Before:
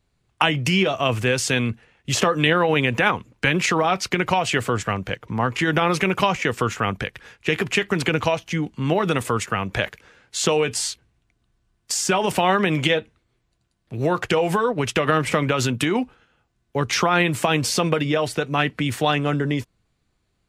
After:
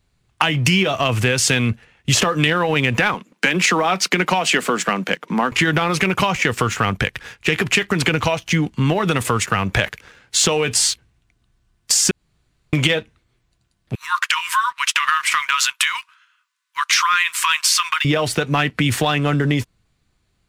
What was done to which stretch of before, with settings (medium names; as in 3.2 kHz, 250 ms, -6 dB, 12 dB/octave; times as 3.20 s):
3.14–5.52 s: steep high-pass 170 Hz 48 dB/octave
12.11–12.73 s: room tone
13.95–18.05 s: brick-wall FIR high-pass 930 Hz
whole clip: compression 4:1, threshold -23 dBFS; waveshaping leveller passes 1; peaking EQ 460 Hz -4 dB 2.3 oct; trim +7 dB